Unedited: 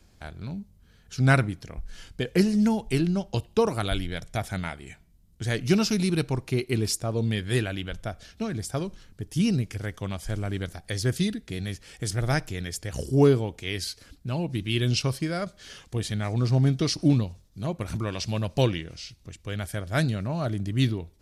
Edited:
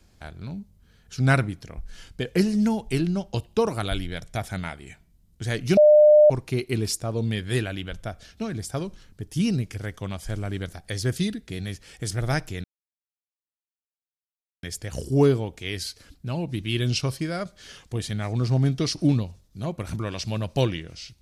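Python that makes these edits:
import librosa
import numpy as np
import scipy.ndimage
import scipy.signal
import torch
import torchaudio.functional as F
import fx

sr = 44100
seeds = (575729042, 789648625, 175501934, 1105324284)

y = fx.edit(x, sr, fx.bleep(start_s=5.77, length_s=0.53, hz=602.0, db=-10.0),
    fx.insert_silence(at_s=12.64, length_s=1.99), tone=tone)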